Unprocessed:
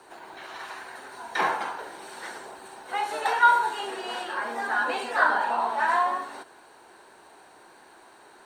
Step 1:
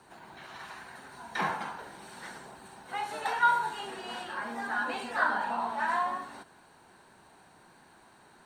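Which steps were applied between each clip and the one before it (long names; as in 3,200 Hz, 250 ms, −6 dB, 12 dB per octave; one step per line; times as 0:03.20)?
low shelf with overshoot 260 Hz +10 dB, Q 1.5
level −5.5 dB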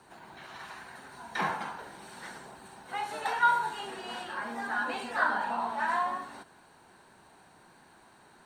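no processing that can be heard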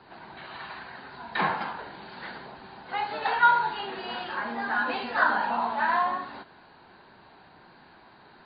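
level +5 dB
MP3 24 kbit/s 11,025 Hz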